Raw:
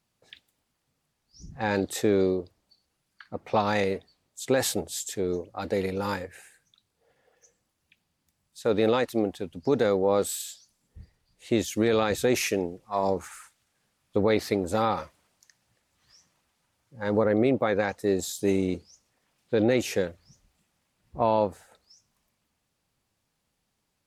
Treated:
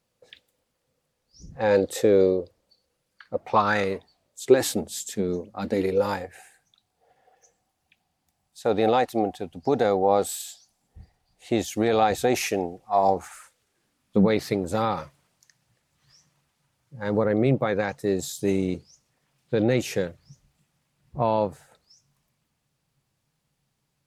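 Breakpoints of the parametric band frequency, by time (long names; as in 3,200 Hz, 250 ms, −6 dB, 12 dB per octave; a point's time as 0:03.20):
parametric band +13.5 dB 0.33 octaves
0:03.34 510 Hz
0:03.71 1,600 Hz
0:04.84 210 Hz
0:05.68 210 Hz
0:06.13 750 Hz
0:13.27 750 Hz
0:14.43 140 Hz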